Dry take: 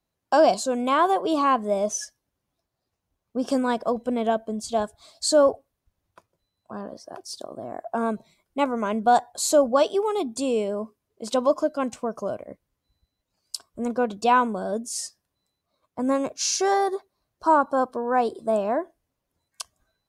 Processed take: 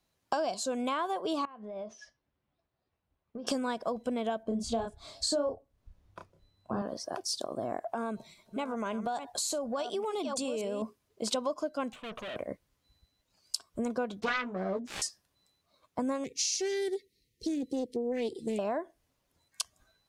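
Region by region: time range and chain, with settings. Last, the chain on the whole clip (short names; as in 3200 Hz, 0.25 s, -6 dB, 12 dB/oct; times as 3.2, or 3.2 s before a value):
1.45–3.47 compressor 10:1, threshold -35 dBFS + air absorption 300 m + resonator 74 Hz, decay 0.17 s
4.43–6.82 tilt -2.5 dB/oct + doubler 31 ms -3.5 dB
7.78–10.82 reverse delay 0.567 s, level -13 dB + compressor 2.5:1, threshold -35 dBFS
11.92–12.36 tube stage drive 42 dB, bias 0.5 + resonant high shelf 4200 Hz -7.5 dB, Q 3
14.2–15.02 self-modulated delay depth 0.55 ms + tape spacing loss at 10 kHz 24 dB + doubler 16 ms -4 dB
16.24–18.59 brick-wall FIR band-stop 520–1800 Hz + Doppler distortion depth 0.15 ms
whole clip: LPF 3900 Hz 6 dB/oct; high shelf 2400 Hz +10.5 dB; compressor 6:1, threshold -32 dBFS; gain +2 dB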